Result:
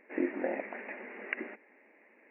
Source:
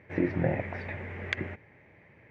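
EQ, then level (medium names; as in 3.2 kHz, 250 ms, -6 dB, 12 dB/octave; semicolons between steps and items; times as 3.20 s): brick-wall FIR band-pass 210–2900 Hz; -3.0 dB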